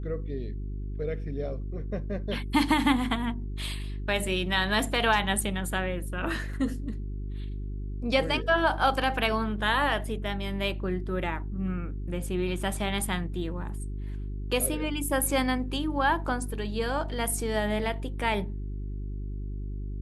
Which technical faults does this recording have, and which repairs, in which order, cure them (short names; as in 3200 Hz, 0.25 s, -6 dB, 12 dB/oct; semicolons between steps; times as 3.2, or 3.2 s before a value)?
hum 50 Hz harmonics 8 -34 dBFS
6.53 gap 4 ms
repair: de-hum 50 Hz, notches 8; interpolate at 6.53, 4 ms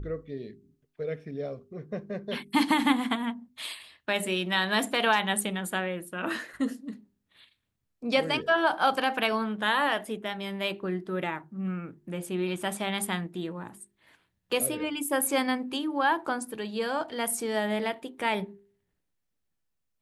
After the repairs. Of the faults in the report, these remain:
none